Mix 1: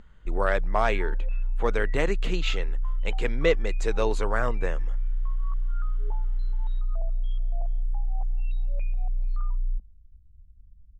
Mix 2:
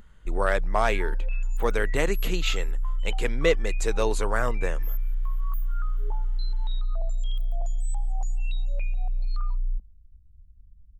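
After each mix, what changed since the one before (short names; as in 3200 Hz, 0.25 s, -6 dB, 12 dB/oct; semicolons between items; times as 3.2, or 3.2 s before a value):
speech: add LPF 9600 Hz 12 dB/oct; second sound: remove air absorption 490 m; master: remove air absorption 100 m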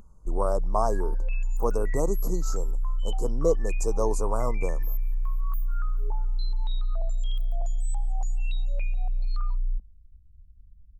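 speech: add elliptic band-stop 1100–5400 Hz, stop band 40 dB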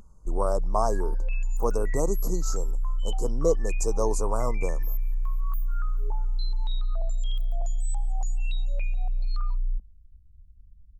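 master: add bell 6100 Hz +4 dB 1.4 oct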